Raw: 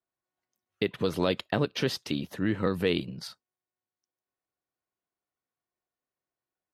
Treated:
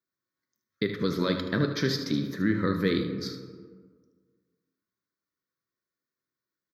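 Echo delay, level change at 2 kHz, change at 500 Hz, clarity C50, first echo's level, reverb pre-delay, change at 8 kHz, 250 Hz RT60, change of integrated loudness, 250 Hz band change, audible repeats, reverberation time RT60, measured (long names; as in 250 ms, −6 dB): 76 ms, +2.0 dB, −1.0 dB, 6.0 dB, −10.5 dB, 3 ms, +0.5 dB, 1.7 s, +1.0 dB, +3.5 dB, 1, 1.6 s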